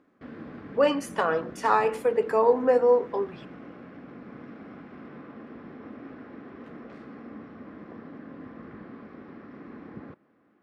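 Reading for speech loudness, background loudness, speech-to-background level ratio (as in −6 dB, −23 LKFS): −24.0 LKFS, −44.0 LKFS, 20.0 dB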